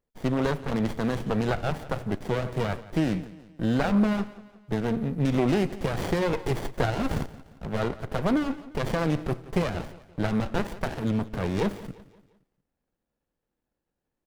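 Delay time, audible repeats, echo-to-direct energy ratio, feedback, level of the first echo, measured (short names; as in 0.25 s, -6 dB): 0.174 s, 3, -17.0 dB, 44%, -18.0 dB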